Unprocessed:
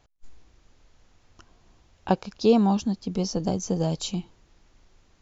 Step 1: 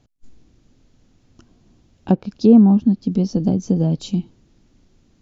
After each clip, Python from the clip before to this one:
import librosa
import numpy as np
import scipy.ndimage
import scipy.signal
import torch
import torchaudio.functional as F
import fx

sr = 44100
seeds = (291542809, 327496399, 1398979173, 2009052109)

y = fx.env_lowpass_down(x, sr, base_hz=1600.0, full_db=-18.5)
y = fx.graphic_eq(y, sr, hz=(125, 250, 1000, 2000), db=(7, 11, -5, -3))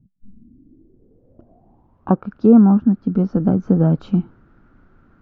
y = fx.rider(x, sr, range_db=10, speed_s=2.0)
y = fx.filter_sweep_lowpass(y, sr, from_hz=190.0, to_hz=1400.0, start_s=0.25, end_s=2.28, q=7.0)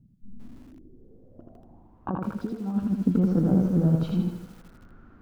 y = fx.over_compress(x, sr, threshold_db=-17.0, ratio=-0.5)
y = fx.echo_feedback(y, sr, ms=80, feedback_pct=45, wet_db=-3)
y = fx.echo_crushed(y, sr, ms=158, feedback_pct=55, bits=6, wet_db=-14.5)
y = F.gain(torch.from_numpy(y), -6.5).numpy()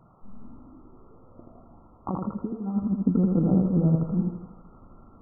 y = fx.quant_dither(x, sr, seeds[0], bits=8, dither='triangular')
y = fx.brickwall_lowpass(y, sr, high_hz=1400.0)